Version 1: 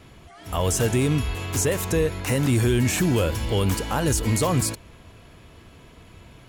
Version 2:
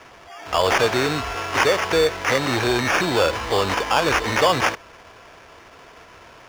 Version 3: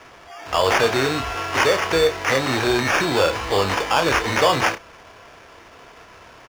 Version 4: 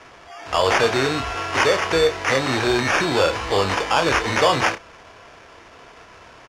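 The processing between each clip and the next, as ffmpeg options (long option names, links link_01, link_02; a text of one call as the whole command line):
ffmpeg -i in.wav -filter_complex "[0:a]acrusher=samples=11:mix=1:aa=0.000001,acrossover=split=430 6400:gain=0.126 1 0.2[link_01][link_02][link_03];[link_01][link_02][link_03]amix=inputs=3:normalize=0,volume=9dB" out.wav
ffmpeg -i in.wav -filter_complex "[0:a]asplit=2[link_01][link_02];[link_02]adelay=30,volume=-9dB[link_03];[link_01][link_03]amix=inputs=2:normalize=0" out.wav
ffmpeg -i in.wav -af "lowpass=9800" out.wav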